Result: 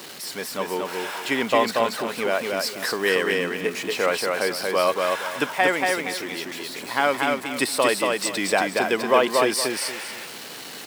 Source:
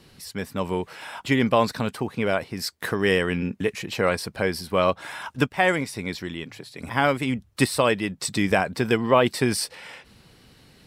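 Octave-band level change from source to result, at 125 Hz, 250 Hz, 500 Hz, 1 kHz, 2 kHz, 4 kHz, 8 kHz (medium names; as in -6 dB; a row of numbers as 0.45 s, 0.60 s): -12.5 dB, -3.5 dB, +1.5 dB, +2.5 dB, +3.0 dB, +4.0 dB, +4.5 dB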